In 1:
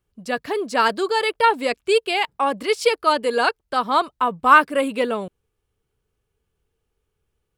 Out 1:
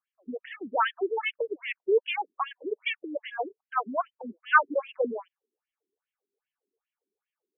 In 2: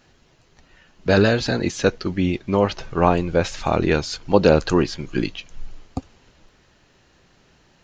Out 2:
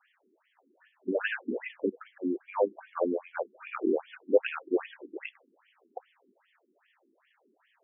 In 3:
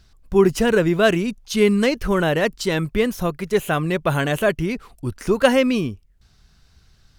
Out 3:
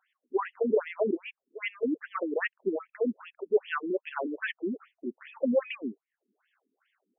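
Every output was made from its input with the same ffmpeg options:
-filter_complex "[0:a]acrossover=split=180|1600[a][b][c];[a]acompressor=threshold=-35dB:ratio=16[d];[d][b][c]amix=inputs=3:normalize=0,afftfilt=real='re*between(b*sr/1024,280*pow(2500/280,0.5+0.5*sin(2*PI*2.5*pts/sr))/1.41,280*pow(2500/280,0.5+0.5*sin(2*PI*2.5*pts/sr))*1.41)':imag='im*between(b*sr/1024,280*pow(2500/280,0.5+0.5*sin(2*PI*2.5*pts/sr))/1.41,280*pow(2500/280,0.5+0.5*sin(2*PI*2.5*pts/sr))*1.41)':win_size=1024:overlap=0.75,volume=-4dB"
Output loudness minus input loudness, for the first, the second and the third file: -9.0, -12.0, -12.0 LU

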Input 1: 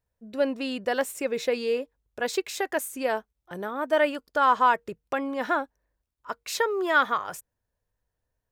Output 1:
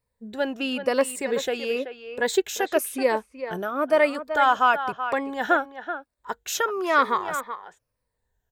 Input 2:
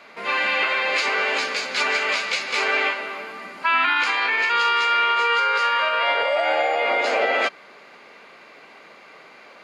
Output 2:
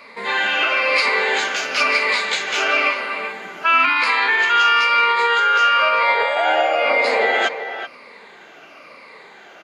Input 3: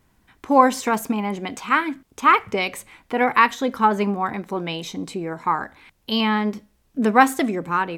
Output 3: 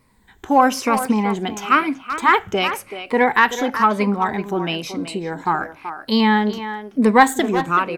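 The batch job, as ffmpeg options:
-filter_complex "[0:a]afftfilt=real='re*pow(10,10/40*sin(2*PI*(0.95*log(max(b,1)*sr/1024/100)/log(2)-(-1)*(pts-256)/sr)))':imag='im*pow(10,10/40*sin(2*PI*(0.95*log(max(b,1)*sr/1024/100)/log(2)-(-1)*(pts-256)/sr)))':win_size=1024:overlap=0.75,asplit=2[a][b];[b]adelay=380,highpass=300,lowpass=3.4k,asoftclip=type=hard:threshold=-8.5dB,volume=-10dB[c];[a][c]amix=inputs=2:normalize=0,asoftclip=type=tanh:threshold=-1dB,volume=2dB"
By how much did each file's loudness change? +2.0, +4.0, +2.5 LU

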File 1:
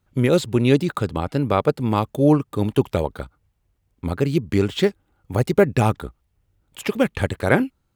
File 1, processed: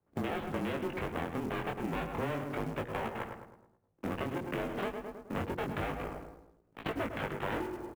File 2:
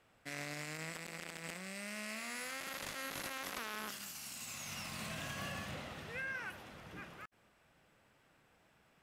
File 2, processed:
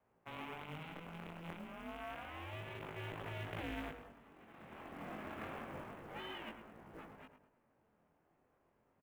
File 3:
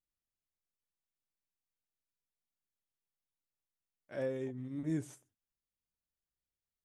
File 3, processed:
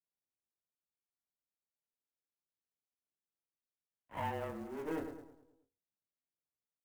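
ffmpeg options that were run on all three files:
-filter_complex "[0:a]volume=21.5dB,asoftclip=hard,volume=-21.5dB,adynamicsmooth=sensitivity=4.5:basefreq=600,highpass=130,aeval=exprs='abs(val(0))':c=same,asplit=2[a][b];[b]adelay=106,lowpass=f=2.1k:p=1,volume=-8.5dB,asplit=2[c][d];[d]adelay=106,lowpass=f=2.1k:p=1,volume=0.49,asplit=2[e][f];[f]adelay=106,lowpass=f=2.1k:p=1,volume=0.49,asplit=2[g][h];[h]adelay=106,lowpass=f=2.1k:p=1,volume=0.49,asplit=2[i][j];[j]adelay=106,lowpass=f=2.1k:p=1,volume=0.49,asplit=2[k][l];[l]adelay=106,lowpass=f=2.1k:p=1,volume=0.49[m];[a][c][e][g][i][k][m]amix=inputs=7:normalize=0,highpass=f=220:t=q:w=0.5412,highpass=f=220:t=q:w=1.307,lowpass=f=3.3k:t=q:w=0.5176,lowpass=f=3.3k:t=q:w=0.7071,lowpass=f=3.3k:t=q:w=1.932,afreqshift=-160,flanger=delay=17.5:depth=6.7:speed=0.3,acrusher=bits=6:mode=log:mix=0:aa=0.000001,acompressor=threshold=-41dB:ratio=6,bandreject=f=60:t=h:w=6,bandreject=f=120:t=h:w=6,bandreject=f=180:t=h:w=6,bandreject=f=240:t=h:w=6,bandreject=f=300:t=h:w=6,bandreject=f=360:t=h:w=6,bandreject=f=420:t=h:w=6,bandreject=f=480:t=h:w=6,volume=9dB"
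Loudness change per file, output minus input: -16.0, -4.5, -2.5 LU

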